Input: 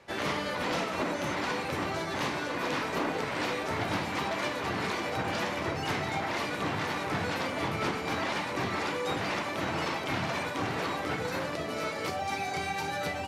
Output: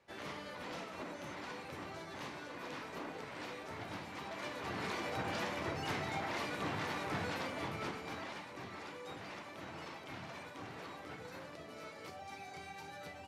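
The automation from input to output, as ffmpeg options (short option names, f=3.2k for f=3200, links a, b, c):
-af "volume=-7dB,afade=t=in:st=4.22:d=0.79:silence=0.446684,afade=t=out:st=7.19:d=1.3:silence=0.354813"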